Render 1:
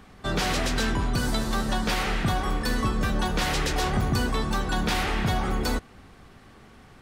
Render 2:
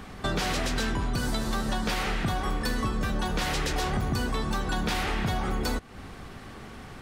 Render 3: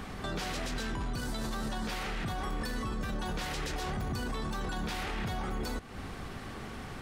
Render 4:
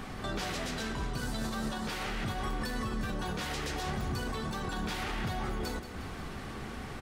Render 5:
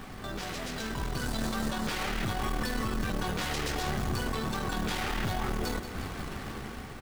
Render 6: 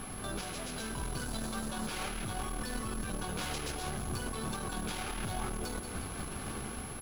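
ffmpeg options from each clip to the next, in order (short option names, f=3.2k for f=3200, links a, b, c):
-af "acompressor=threshold=-36dB:ratio=3,volume=7.5dB"
-af "alimiter=level_in=4.5dB:limit=-24dB:level=0:latency=1:release=23,volume=-4.5dB,volume=1dB"
-filter_complex "[0:a]flanger=delay=7.9:depth=6.9:regen=-58:speed=0.38:shape=sinusoidal,asplit=2[a][b];[b]aecho=0:1:180|360|540|720|900|1080|1260:0.266|0.16|0.0958|0.0575|0.0345|0.0207|0.0124[c];[a][c]amix=inputs=2:normalize=0,volume=4.5dB"
-af "dynaudnorm=f=380:g=5:m=6.5dB,aeval=exprs='(tanh(17.8*val(0)+0.55)-tanh(0.55))/17.8':c=same,acrusher=bits=4:mode=log:mix=0:aa=0.000001"
-af "alimiter=level_in=4dB:limit=-24dB:level=0:latency=1:release=355,volume=-4dB,bandreject=f=1.9k:w=8.4,aeval=exprs='val(0)+0.00501*sin(2*PI*11000*n/s)':c=same"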